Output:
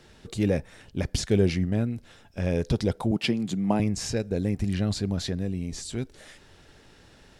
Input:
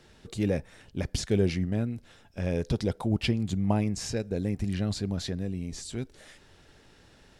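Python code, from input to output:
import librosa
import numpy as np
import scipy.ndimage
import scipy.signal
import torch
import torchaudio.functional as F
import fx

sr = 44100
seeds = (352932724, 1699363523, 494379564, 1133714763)

y = fx.highpass(x, sr, hz=150.0, slope=24, at=(3.11, 3.8))
y = y * librosa.db_to_amplitude(3.0)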